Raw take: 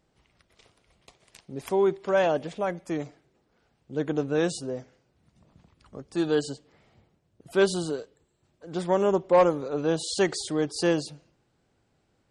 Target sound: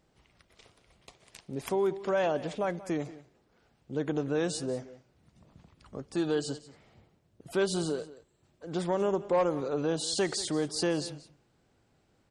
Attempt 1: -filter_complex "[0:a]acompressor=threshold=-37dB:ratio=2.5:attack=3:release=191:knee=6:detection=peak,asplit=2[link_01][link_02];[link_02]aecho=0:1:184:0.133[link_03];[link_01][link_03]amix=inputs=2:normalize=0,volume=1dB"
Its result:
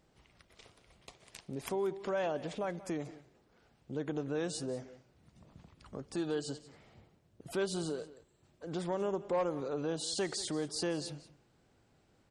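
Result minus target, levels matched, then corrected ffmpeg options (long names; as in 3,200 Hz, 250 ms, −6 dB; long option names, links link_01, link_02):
downward compressor: peak gain reduction +6 dB
-filter_complex "[0:a]acompressor=threshold=-27dB:ratio=2.5:attack=3:release=191:knee=6:detection=peak,asplit=2[link_01][link_02];[link_02]aecho=0:1:184:0.133[link_03];[link_01][link_03]amix=inputs=2:normalize=0,volume=1dB"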